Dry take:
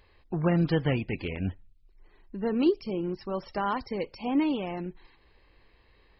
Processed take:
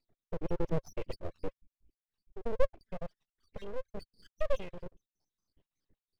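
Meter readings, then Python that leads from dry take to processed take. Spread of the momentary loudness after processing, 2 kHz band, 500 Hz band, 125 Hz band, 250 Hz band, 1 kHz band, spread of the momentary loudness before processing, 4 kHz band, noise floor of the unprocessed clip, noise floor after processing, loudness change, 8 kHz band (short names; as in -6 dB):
15 LU, -13.0 dB, -6.0 dB, -12.5 dB, -17.0 dB, -13.0 dB, 10 LU, -14.0 dB, -62 dBFS, under -85 dBFS, -10.5 dB, n/a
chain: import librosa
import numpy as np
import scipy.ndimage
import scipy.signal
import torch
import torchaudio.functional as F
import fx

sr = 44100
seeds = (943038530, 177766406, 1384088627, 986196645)

y = fx.spec_dropout(x, sr, seeds[0], share_pct=70)
y = fx.formant_cascade(y, sr, vowel='i')
y = np.abs(y)
y = y * 10.0 ** (6.5 / 20.0)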